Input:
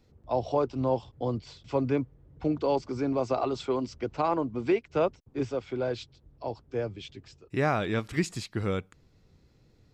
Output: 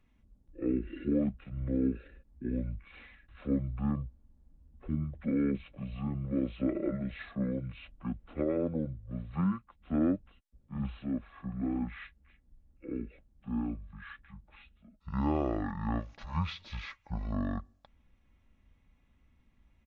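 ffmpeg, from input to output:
ffmpeg -i in.wav -af "aecho=1:1:1.8:0.35,asetrate=22050,aresample=44100,volume=-5dB" out.wav

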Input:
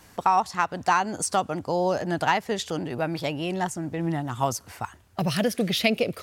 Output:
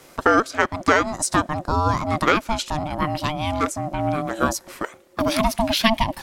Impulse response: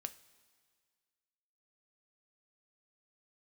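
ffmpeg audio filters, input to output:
-af "aeval=exprs='val(0)*sin(2*PI*450*n/s)':channel_layout=same,volume=7dB"

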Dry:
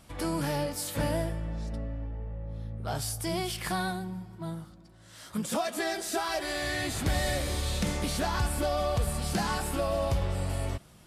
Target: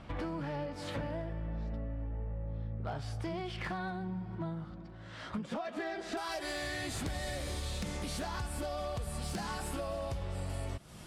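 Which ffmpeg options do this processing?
ffmpeg -i in.wav -af "asetnsamples=nb_out_samples=441:pad=0,asendcmd='6.17 lowpass f 11000',lowpass=2600,acompressor=threshold=-41dB:ratio=10,asoftclip=type=hard:threshold=-37dB,volume=6.5dB" out.wav

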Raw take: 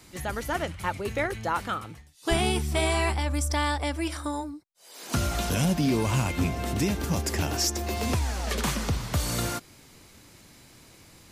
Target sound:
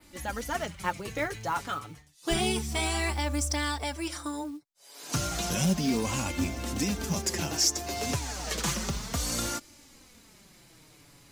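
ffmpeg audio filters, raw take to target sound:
ffmpeg -i in.wav -af "adynamicequalizer=threshold=0.00355:dfrequency=6300:dqfactor=1.2:tfrequency=6300:tqfactor=1.2:attack=5:release=100:ratio=0.375:range=3.5:mode=boostabove:tftype=bell,flanger=delay=3.4:depth=3.7:regen=16:speed=0.31:shape=sinusoidal,acrusher=bits=6:mode=log:mix=0:aa=0.000001" out.wav

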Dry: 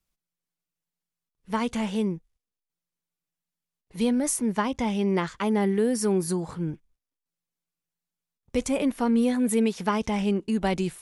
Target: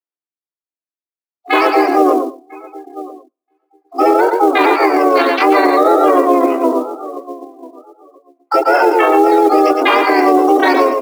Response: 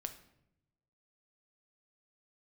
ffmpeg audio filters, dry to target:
-filter_complex "[0:a]flanger=delay=16.5:depth=3:speed=1.6,highpass=frequency=160:width_type=q:width=0.5412,highpass=frequency=160:width_type=q:width=1.307,lowpass=frequency=2600:width_type=q:width=0.5176,lowpass=frequency=2600:width_type=q:width=0.7071,lowpass=frequency=2600:width_type=q:width=1.932,afreqshift=170,asplit=2[link_01][link_02];[link_02]adelay=986,lowpass=frequency=1200:poles=1,volume=-18.5dB,asplit=2[link_03][link_04];[link_04]adelay=986,lowpass=frequency=1200:poles=1,volume=0.31,asplit=2[link_05][link_06];[link_06]adelay=986,lowpass=frequency=1200:poles=1,volume=0.31[link_07];[link_01][link_03][link_05][link_07]amix=inputs=4:normalize=0,asplit=2[link_08][link_09];[1:a]atrim=start_sample=2205,adelay=107[link_10];[link_09][link_10]afir=irnorm=-1:irlink=0,volume=-9.5dB[link_11];[link_08][link_11]amix=inputs=2:normalize=0,acontrast=43,afftdn=noise_reduction=30:noise_floor=-33,asplit=2[link_12][link_13];[link_13]aecho=0:1:113:0.447[link_14];[link_12][link_14]amix=inputs=2:normalize=0,acrusher=bits=7:mode=log:mix=0:aa=0.000001,asplit=4[link_15][link_16][link_17][link_18];[link_16]asetrate=35002,aresample=44100,atempo=1.25992,volume=-2dB[link_19];[link_17]asetrate=52444,aresample=44100,atempo=0.840896,volume=-12dB[link_20];[link_18]asetrate=88200,aresample=44100,atempo=0.5,volume=-1dB[link_21];[link_15][link_19][link_20][link_21]amix=inputs=4:normalize=0,alimiter=level_in=11.5dB:limit=-1dB:release=50:level=0:latency=1,volume=-1dB"

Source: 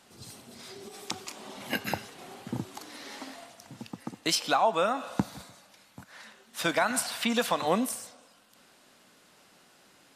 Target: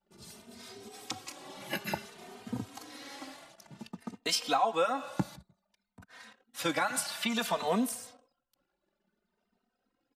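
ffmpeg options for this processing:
ffmpeg -i in.wav -filter_complex "[0:a]asettb=1/sr,asplit=3[link_01][link_02][link_03];[link_01]atrim=end=5.354[link_04];[link_02]atrim=start=5.35:end=6.02,asetpts=PTS-STARTPTS,afade=type=in:duration=0.004:curve=qsin,afade=type=out:start_time=0.666:duration=0.004:curve=qsin,acrossover=split=170[link_05][link_06];[link_06]acompressor=threshold=-55dB:ratio=5[link_07];[link_05][link_07]amix=inputs=2:normalize=0[link_08];[link_03]atrim=start=6.016[link_09];[link_04][link_08]acrossfade=duration=0.004:curve1=hsin:curve2=qsin[link_10];[link_10][link_09]acrossfade=duration=0.004:curve1=qsin:curve2=hsin,anlmdn=0.001,asplit=2[link_11][link_12];[link_12]adelay=3,afreqshift=0.56[link_13];[link_11][link_13]amix=inputs=2:normalize=1" out.wav

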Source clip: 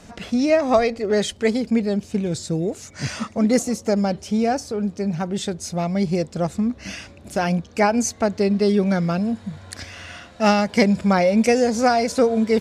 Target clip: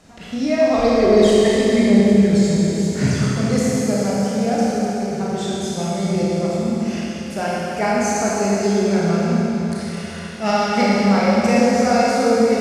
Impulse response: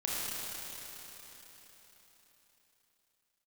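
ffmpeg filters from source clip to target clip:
-filter_complex "[0:a]asplit=3[link_01][link_02][link_03];[link_01]afade=type=out:start_time=0.78:duration=0.02[link_04];[link_02]aphaser=in_gain=1:out_gain=1:delay=1.1:decay=0.73:speed=1:type=sinusoidal,afade=type=in:start_time=0.78:duration=0.02,afade=type=out:start_time=3.17:duration=0.02[link_05];[link_03]afade=type=in:start_time=3.17:duration=0.02[link_06];[link_04][link_05][link_06]amix=inputs=3:normalize=0[link_07];[1:a]atrim=start_sample=2205,asetrate=48510,aresample=44100[link_08];[link_07][link_08]afir=irnorm=-1:irlink=0,volume=-3.5dB"

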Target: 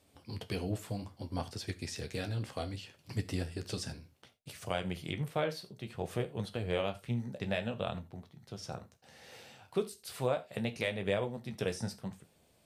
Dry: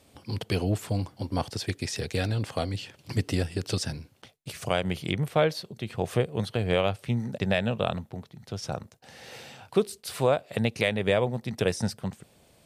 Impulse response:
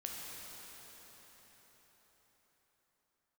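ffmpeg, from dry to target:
-filter_complex "[0:a]asplit=2[link_01][link_02];[1:a]atrim=start_sample=2205,afade=type=out:start_time=0.14:duration=0.01,atrim=end_sample=6615,highshelf=frequency=11000:gain=8.5[link_03];[link_02][link_03]afir=irnorm=-1:irlink=0,volume=-4dB[link_04];[link_01][link_04]amix=inputs=2:normalize=0,flanger=delay=9.9:depth=7.1:regen=-49:speed=0.63:shape=triangular,volume=-7.5dB"

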